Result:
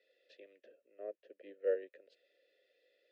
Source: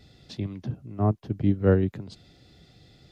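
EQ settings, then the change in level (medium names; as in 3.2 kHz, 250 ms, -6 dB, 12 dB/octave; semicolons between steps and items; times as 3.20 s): vowel filter e; high-pass 410 Hz 24 dB/octave; Butterworth band-stop 830 Hz, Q 2.6; -2.0 dB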